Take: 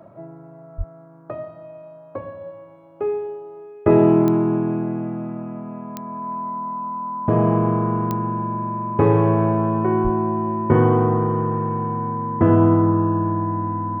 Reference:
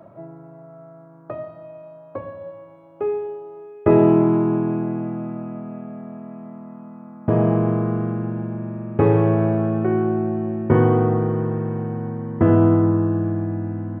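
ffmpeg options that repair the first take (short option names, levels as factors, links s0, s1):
-filter_complex "[0:a]adeclick=t=4,bandreject=f=1000:w=30,asplit=3[s0][s1][s2];[s0]afade=t=out:st=0.77:d=0.02[s3];[s1]highpass=f=140:w=0.5412,highpass=f=140:w=1.3066,afade=t=in:st=0.77:d=0.02,afade=t=out:st=0.89:d=0.02[s4];[s2]afade=t=in:st=0.89:d=0.02[s5];[s3][s4][s5]amix=inputs=3:normalize=0,asplit=3[s6][s7][s8];[s6]afade=t=out:st=10.03:d=0.02[s9];[s7]highpass=f=140:w=0.5412,highpass=f=140:w=1.3066,afade=t=in:st=10.03:d=0.02,afade=t=out:st=10.15:d=0.02[s10];[s8]afade=t=in:st=10.15:d=0.02[s11];[s9][s10][s11]amix=inputs=3:normalize=0"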